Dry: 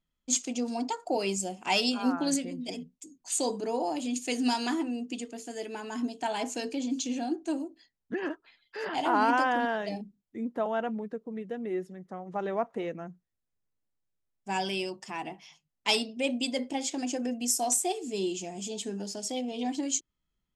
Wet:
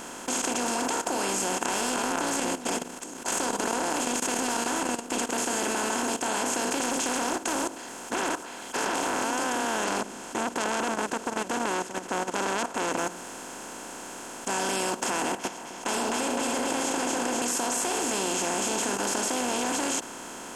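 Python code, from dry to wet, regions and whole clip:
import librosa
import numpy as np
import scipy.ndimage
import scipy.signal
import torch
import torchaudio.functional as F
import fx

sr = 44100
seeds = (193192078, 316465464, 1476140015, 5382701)

y = fx.chain(x, sr, fx.tube_stage(drive_db=24.0, bias=0.25),
    fx.level_steps(step_db=11), at=(1.57, 5.29))
y = fx.chain(y, sr, fx.low_shelf(hz=140.0, db=-11.5),
    fx.doppler_dist(depth_ms=0.68), at=(6.8, 9.24))
y = fx.chain(y, sr, fx.lowpass(hz=5400.0, slope=12),
    fx.transformer_sat(knee_hz=1800.0), at=(9.84, 12.97))
y = fx.chain(y, sr, fx.high_shelf(hz=2100.0, db=-11.5),
    fx.echo_alternate(ms=128, hz=840.0, feedback_pct=61, wet_db=-6.0), at=(15.32, 17.42))
y = fx.bin_compress(y, sr, power=0.2)
y = fx.level_steps(y, sr, step_db=12)
y = y * 10.0 ** (-4.0 / 20.0)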